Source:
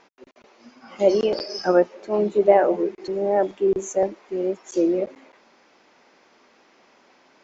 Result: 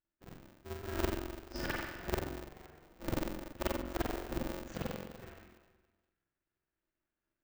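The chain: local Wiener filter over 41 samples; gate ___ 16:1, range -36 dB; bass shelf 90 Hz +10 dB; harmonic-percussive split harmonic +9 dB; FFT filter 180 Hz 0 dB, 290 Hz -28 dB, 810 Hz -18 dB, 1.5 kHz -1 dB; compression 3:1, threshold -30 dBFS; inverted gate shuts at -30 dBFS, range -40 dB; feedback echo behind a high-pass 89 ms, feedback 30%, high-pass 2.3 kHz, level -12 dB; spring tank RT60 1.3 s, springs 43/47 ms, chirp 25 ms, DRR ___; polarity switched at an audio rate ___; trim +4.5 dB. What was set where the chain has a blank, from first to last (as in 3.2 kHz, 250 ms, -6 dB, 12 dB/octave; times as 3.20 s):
-52 dBFS, -9 dB, 150 Hz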